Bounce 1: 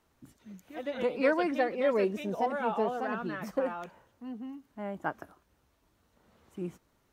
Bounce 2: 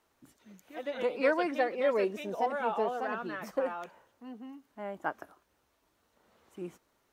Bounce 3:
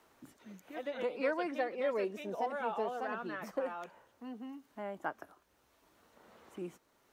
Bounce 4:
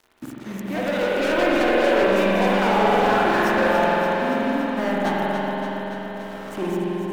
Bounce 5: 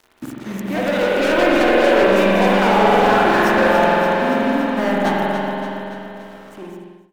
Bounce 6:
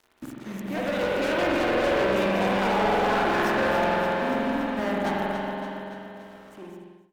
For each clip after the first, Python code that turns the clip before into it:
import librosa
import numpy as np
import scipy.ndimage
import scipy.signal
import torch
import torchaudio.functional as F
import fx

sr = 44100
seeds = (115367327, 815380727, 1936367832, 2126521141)

y1 = fx.bass_treble(x, sr, bass_db=-10, treble_db=0)
y2 = fx.band_squash(y1, sr, depth_pct=40)
y2 = F.gain(torch.from_numpy(y2), -4.5).numpy()
y3 = fx.leveller(y2, sr, passes=5)
y3 = fx.echo_alternate(y3, sr, ms=143, hz=940.0, feedback_pct=85, wet_db=-6.0)
y3 = fx.rev_spring(y3, sr, rt60_s=3.8, pass_ms=(46,), chirp_ms=55, drr_db=-5.0)
y4 = fx.fade_out_tail(y3, sr, length_s=2.04)
y4 = F.gain(torch.from_numpy(y4), 4.5).numpy()
y5 = fx.tube_stage(y4, sr, drive_db=11.0, bias=0.5)
y5 = F.gain(torch.from_numpy(y5), -5.5).numpy()